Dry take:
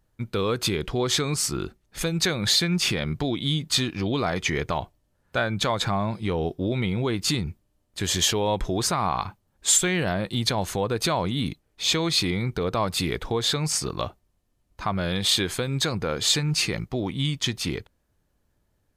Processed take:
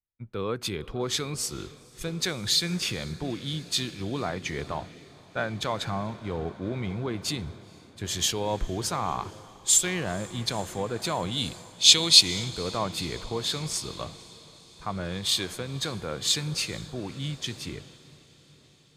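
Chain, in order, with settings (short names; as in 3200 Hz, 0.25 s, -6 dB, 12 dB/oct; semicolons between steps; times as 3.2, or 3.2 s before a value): 11.22–12.21 band shelf 5400 Hz +9 dB 2.3 oct; on a send: diffused feedback echo 0.496 s, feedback 79%, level -14.5 dB; on the sum: three-band expander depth 70%; gain -6 dB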